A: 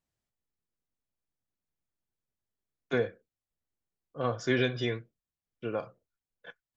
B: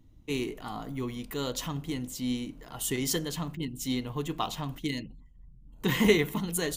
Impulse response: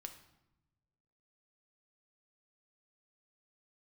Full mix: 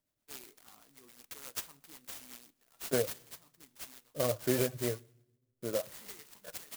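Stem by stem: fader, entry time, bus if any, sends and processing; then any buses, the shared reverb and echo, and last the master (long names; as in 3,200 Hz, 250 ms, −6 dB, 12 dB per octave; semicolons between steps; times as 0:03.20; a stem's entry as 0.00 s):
−2.0 dB, 0.00 s, send −10 dB, reverb reduction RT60 0.54 s; parametric band 600 Hz +12.5 dB 0.21 octaves
−1.5 dB, 0.00 s, send −6 dB, first difference; automatic ducking −15 dB, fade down 0.45 s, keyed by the first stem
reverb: on, RT60 1.0 s, pre-delay 5 ms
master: rotating-speaker cabinet horn 8 Hz; converter with an unsteady clock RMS 0.11 ms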